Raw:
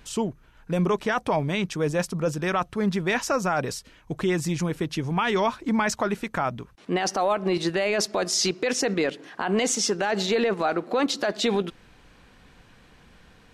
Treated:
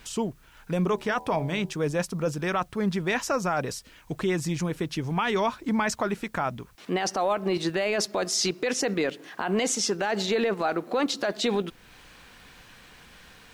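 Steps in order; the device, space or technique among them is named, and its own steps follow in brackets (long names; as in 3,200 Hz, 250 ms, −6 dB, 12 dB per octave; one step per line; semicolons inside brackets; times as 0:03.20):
noise-reduction cassette on a plain deck (one half of a high-frequency compander encoder only; tape wow and flutter 29 cents; white noise bed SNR 38 dB)
0:00.87–0:01.73: hum removal 75.81 Hz, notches 13
level −2 dB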